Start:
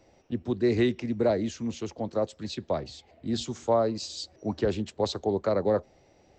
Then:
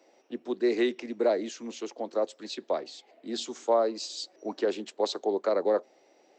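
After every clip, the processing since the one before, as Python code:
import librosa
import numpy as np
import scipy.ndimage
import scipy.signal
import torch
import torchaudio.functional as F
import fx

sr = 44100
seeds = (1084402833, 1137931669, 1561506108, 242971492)

y = scipy.signal.sosfilt(scipy.signal.butter(4, 290.0, 'highpass', fs=sr, output='sos'), x)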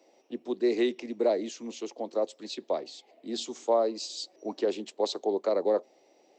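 y = fx.peak_eq(x, sr, hz=1500.0, db=-8.0, octaves=0.73)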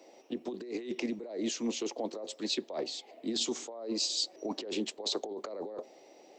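y = fx.over_compress(x, sr, threshold_db=-36.0, ratio=-1.0)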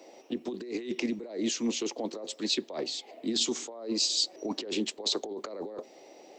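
y = fx.dynamic_eq(x, sr, hz=650.0, q=1.0, threshold_db=-49.0, ratio=4.0, max_db=-5)
y = F.gain(torch.from_numpy(y), 4.5).numpy()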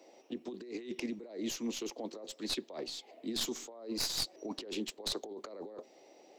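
y = fx.tracing_dist(x, sr, depth_ms=0.046)
y = F.gain(torch.from_numpy(y), -7.0).numpy()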